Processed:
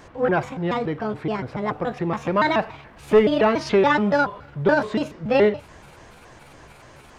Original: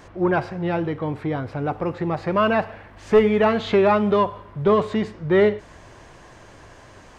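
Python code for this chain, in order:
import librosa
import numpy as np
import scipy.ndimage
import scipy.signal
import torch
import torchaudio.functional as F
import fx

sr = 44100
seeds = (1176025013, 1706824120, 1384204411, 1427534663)

y = fx.pitch_trill(x, sr, semitones=6.0, every_ms=142)
y = fx.hum_notches(y, sr, base_hz=50, count=2)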